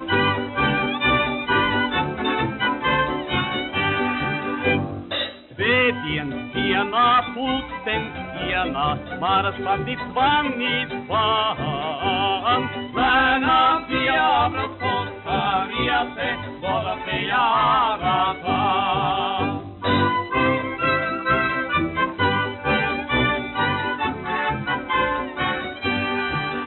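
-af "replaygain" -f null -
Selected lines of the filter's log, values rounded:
track_gain = +2.1 dB
track_peak = 0.267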